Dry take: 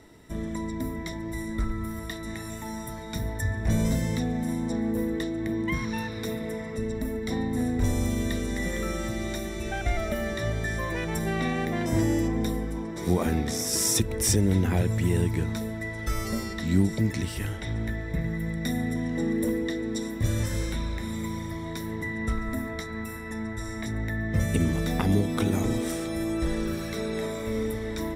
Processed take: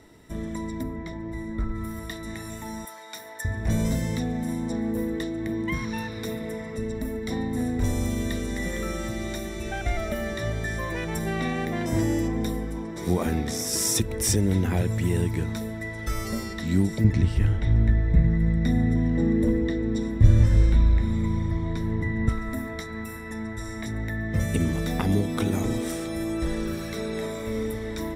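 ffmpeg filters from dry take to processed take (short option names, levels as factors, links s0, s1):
-filter_complex "[0:a]asplit=3[s0][s1][s2];[s0]afade=t=out:st=0.82:d=0.02[s3];[s1]lowpass=f=1700:p=1,afade=t=in:st=0.82:d=0.02,afade=t=out:st=1.74:d=0.02[s4];[s2]afade=t=in:st=1.74:d=0.02[s5];[s3][s4][s5]amix=inputs=3:normalize=0,asettb=1/sr,asplit=3[s6][s7][s8];[s6]atrim=end=2.854[s9];[s7]atrim=start=2.85:end=3.45,asetpts=PTS-STARTPTS,afade=t=in:d=0.004:c=qsin,afade=t=out:st=0.596:d=0.004:c=qsin,highpass=690[s10];[s8]atrim=start=3.446[s11];[s9][s10]acrossfade=d=0.004:c1=hsin:c2=qsin[s12];[s12][s11]acrossfade=d=0.004:c1=qsin:c2=hsin,asettb=1/sr,asplit=3[s13][s14][s15];[s13]atrim=end=17.044[s16];[s14]atrim=start=17.04:end=22.29,asetpts=PTS-STARTPTS,afade=t=in:d=0.004:c=qsin,afade=t=out:st=5.246:d=0.004:c=qsin,aemphasis=mode=reproduction:type=bsi[s17];[s15]atrim=start=22.286[s18];[s16][s17]acrossfade=d=0.004:c1=hsin:c2=qsin[s19];[s19][s18]acrossfade=d=0.004:c1=qsin:c2=hsin"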